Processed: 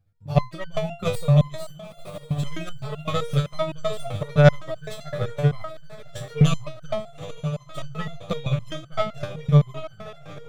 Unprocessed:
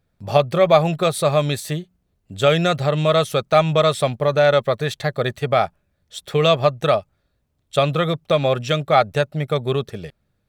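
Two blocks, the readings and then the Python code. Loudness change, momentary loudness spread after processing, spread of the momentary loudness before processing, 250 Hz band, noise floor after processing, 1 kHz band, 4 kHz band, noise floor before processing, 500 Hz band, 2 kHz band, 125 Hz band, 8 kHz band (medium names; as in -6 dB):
-5.5 dB, 19 LU, 9 LU, -1.5 dB, -47 dBFS, -11.5 dB, -11.0 dB, -70 dBFS, -10.0 dB, -8.0 dB, +1.5 dB, -8.5 dB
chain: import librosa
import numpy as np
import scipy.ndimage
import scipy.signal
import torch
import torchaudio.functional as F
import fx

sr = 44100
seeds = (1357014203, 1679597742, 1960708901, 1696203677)

p1 = fx.tracing_dist(x, sr, depth_ms=0.067)
p2 = fx.low_shelf_res(p1, sr, hz=210.0, db=10.0, q=1.5)
p3 = p2 + fx.echo_diffused(p2, sr, ms=925, feedback_pct=50, wet_db=-11.0, dry=0)
p4 = p3 * (1.0 - 0.65 / 2.0 + 0.65 / 2.0 * np.cos(2.0 * np.pi * 13.0 * (np.arange(len(p3)) / sr)))
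p5 = fx.resonator_held(p4, sr, hz=7.8, low_hz=99.0, high_hz=1500.0)
y = F.gain(torch.from_numpy(p5), 5.5).numpy()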